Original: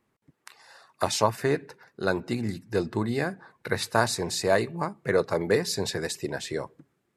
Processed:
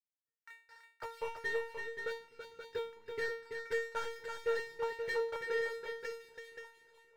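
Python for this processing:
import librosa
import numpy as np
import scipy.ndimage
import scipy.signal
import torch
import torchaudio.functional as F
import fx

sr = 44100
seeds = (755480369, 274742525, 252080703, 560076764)

y = scipy.signal.sosfilt(scipy.signal.butter(2, 3200.0, 'lowpass', fs=sr, output='sos'), x)
y = fx.peak_eq(y, sr, hz=1900.0, db=12.0, octaves=1.3)
y = fx.hum_notches(y, sr, base_hz=60, count=3)
y = fx.level_steps(y, sr, step_db=23)
y = fx.leveller(y, sr, passes=3)
y = fx.transient(y, sr, attack_db=7, sustain_db=3)
y = fx.rider(y, sr, range_db=10, speed_s=0.5)
y = fx.comb_fb(y, sr, f0_hz=460.0, decay_s=0.4, harmonics='all', damping=0.0, mix_pct=100)
y = 10.0 ** (-23.5 / 20.0) * np.tanh(y / 10.0 ** (-23.5 / 20.0))
y = fx.echo_multitap(y, sr, ms=(331, 528), db=(-6.5, -7.0))
y = y * librosa.db_to_amplitude(-4.0)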